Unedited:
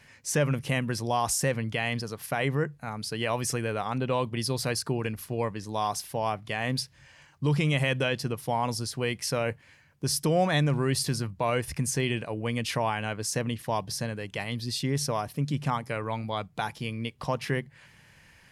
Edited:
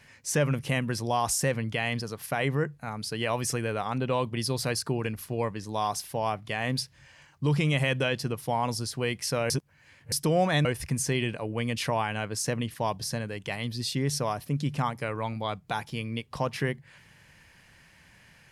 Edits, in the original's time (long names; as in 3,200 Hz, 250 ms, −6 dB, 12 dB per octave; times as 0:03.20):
0:09.50–0:10.12: reverse
0:10.65–0:11.53: remove